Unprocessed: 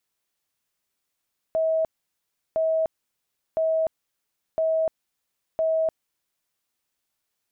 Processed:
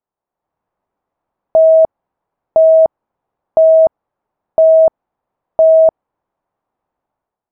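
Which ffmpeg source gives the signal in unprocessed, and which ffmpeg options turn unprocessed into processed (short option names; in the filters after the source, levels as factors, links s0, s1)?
-f lavfi -i "aevalsrc='0.106*sin(2*PI*643*mod(t,1.01))*lt(mod(t,1.01),192/643)':d=5.05:s=44100"
-af "dynaudnorm=f=160:g=5:m=3.55,lowpass=f=860:t=q:w=1.9"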